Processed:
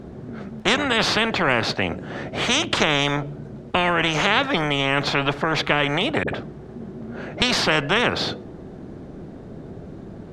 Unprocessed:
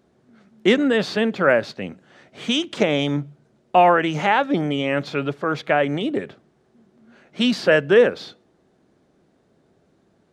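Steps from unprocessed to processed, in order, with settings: tilt -3 dB/oct; 6.23–7.42 dispersion highs, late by 49 ms, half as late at 430 Hz; spectral compressor 4:1; gain -2.5 dB

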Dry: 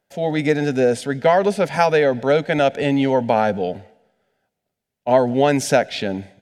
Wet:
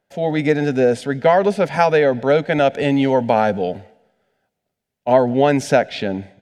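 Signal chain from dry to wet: high shelf 5400 Hz -8 dB, from 2.73 s -2 dB, from 5.13 s -10.5 dB; gain +1.5 dB

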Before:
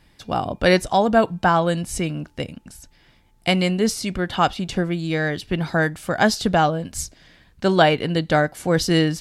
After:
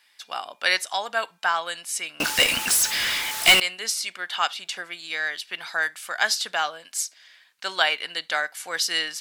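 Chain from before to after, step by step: HPF 1500 Hz 12 dB/oct; 2.2–3.6 power-law curve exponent 0.35; reverb, pre-delay 23 ms, DRR 25 dB; gain +2 dB

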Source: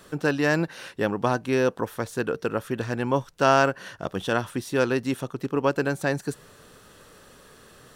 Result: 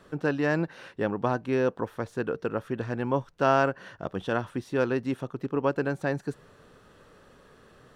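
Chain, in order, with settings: LPF 1900 Hz 6 dB/oct; gain -2.5 dB

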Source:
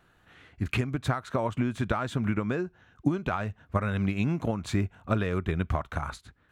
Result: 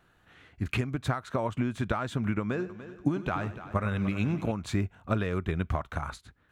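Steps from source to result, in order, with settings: 2.4–4.52 multi-head echo 98 ms, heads first and third, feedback 45%, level -14 dB; gain -1.5 dB

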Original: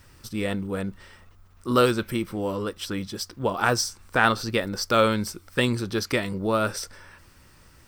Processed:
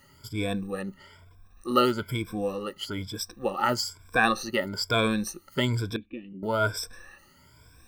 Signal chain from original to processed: moving spectral ripple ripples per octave 1.7, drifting +1.1 Hz, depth 22 dB; 5.96–6.43 vocal tract filter i; gain -7 dB

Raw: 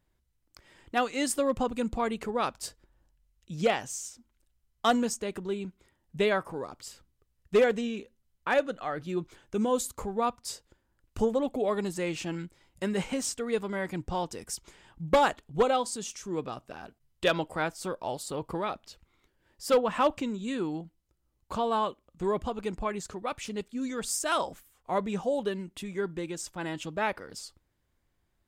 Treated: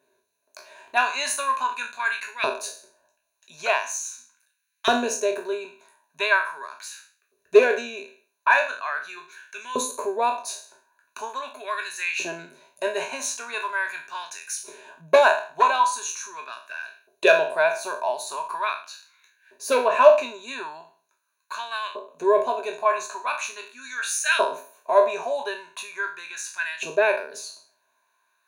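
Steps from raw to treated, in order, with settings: spectral trails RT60 0.41 s; dynamic EQ 2300 Hz, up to +4 dB, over -39 dBFS, Q 0.82; in parallel at +2 dB: compressor, threshold -43 dBFS, peak gain reduction 23.5 dB; on the sum: LFO high-pass saw up 0.41 Hz 410–2000 Hz; ripple EQ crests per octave 1.5, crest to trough 16 dB; gain -1.5 dB

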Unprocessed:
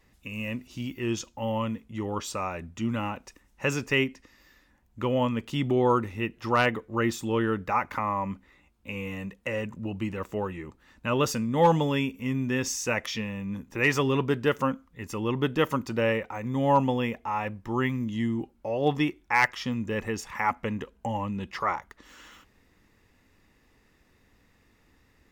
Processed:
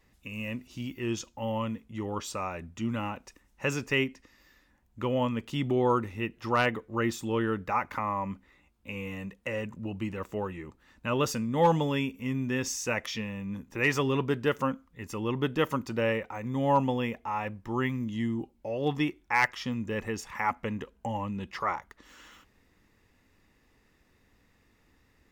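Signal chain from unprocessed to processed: 18.34–18.96 bell 2500 Hz -> 500 Hz -11.5 dB 0.4 oct; gain -2.5 dB

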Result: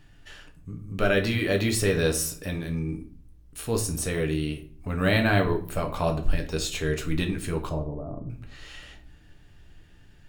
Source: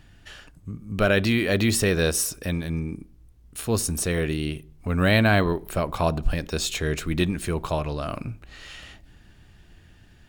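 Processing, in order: 7.69–8.3 Bessel low-pass 560 Hz, order 8; shoebox room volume 39 m³, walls mixed, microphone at 0.38 m; gain -4.5 dB

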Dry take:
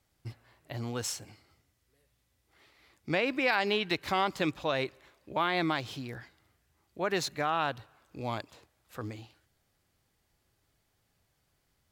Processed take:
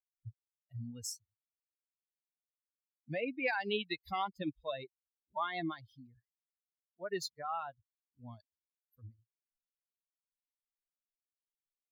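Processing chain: per-bin expansion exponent 3; gain -2 dB

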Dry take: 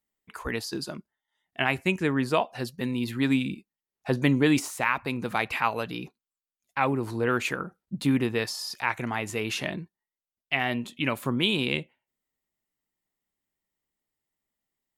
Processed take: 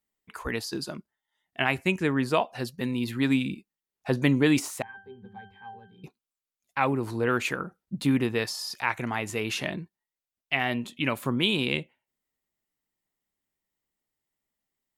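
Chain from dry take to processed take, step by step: 4.82–6.04 octave resonator G, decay 0.32 s

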